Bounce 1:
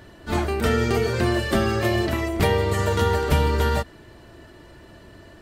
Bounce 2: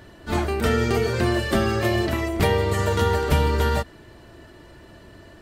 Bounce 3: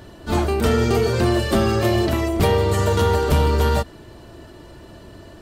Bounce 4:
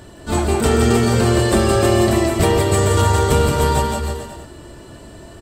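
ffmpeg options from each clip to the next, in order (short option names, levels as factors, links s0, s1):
-af anull
-af "equalizer=f=1900:w=1.7:g=-6,asoftclip=type=tanh:threshold=0.188,volume=1.78"
-filter_complex "[0:a]equalizer=f=8000:w=4.9:g=14,asplit=2[s0][s1];[s1]aecho=0:1:170|314.5|437.3|541.7|630.5:0.631|0.398|0.251|0.158|0.1[s2];[s0][s2]amix=inputs=2:normalize=0,volume=1.12"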